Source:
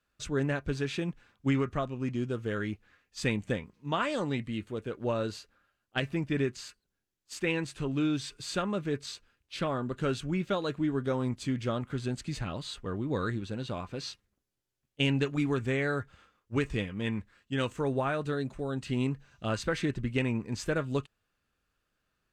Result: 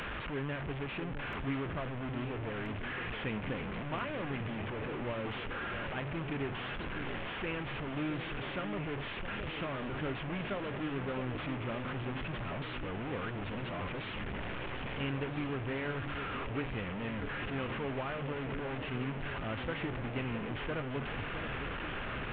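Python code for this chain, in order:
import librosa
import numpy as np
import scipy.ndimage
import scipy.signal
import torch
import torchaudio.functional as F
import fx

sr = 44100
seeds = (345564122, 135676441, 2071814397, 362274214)

y = fx.delta_mod(x, sr, bps=16000, step_db=-24.5)
y = fx.echo_alternate(y, sr, ms=665, hz=830.0, feedback_pct=81, wet_db=-8.5)
y = F.gain(torch.from_numpy(y), -8.5).numpy()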